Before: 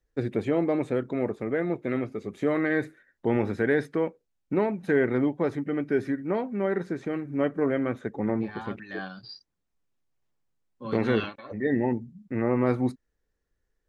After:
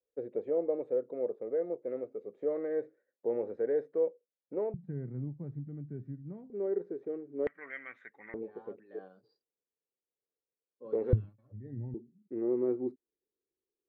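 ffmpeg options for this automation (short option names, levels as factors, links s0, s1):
-af "asetnsamples=n=441:p=0,asendcmd='4.74 bandpass f 140;6.5 bandpass f 430;7.47 bandpass f 2000;8.34 bandpass f 460;11.13 bandpass f 110;11.94 bandpass f 370',bandpass=f=500:t=q:w=5.3:csg=0"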